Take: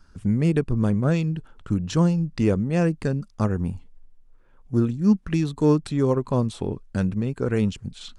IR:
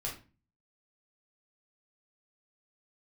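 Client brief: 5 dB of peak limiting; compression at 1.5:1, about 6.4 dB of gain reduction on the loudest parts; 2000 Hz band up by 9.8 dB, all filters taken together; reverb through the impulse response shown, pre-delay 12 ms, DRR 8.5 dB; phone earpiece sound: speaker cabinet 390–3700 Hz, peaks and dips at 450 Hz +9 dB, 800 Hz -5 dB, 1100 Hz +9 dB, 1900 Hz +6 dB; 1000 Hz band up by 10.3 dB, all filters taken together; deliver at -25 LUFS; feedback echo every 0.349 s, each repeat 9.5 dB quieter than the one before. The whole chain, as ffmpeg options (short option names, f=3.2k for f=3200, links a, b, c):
-filter_complex "[0:a]equalizer=f=1k:t=o:g=5,equalizer=f=2k:t=o:g=6.5,acompressor=threshold=-31dB:ratio=1.5,alimiter=limit=-18dB:level=0:latency=1,aecho=1:1:349|698|1047|1396:0.335|0.111|0.0365|0.012,asplit=2[a][b];[1:a]atrim=start_sample=2205,adelay=12[c];[b][c]afir=irnorm=-1:irlink=0,volume=-10dB[d];[a][d]amix=inputs=2:normalize=0,highpass=390,equalizer=f=450:t=q:w=4:g=9,equalizer=f=800:t=q:w=4:g=-5,equalizer=f=1.1k:t=q:w=4:g=9,equalizer=f=1.9k:t=q:w=4:g=6,lowpass=f=3.7k:w=0.5412,lowpass=f=3.7k:w=1.3066,volume=6dB"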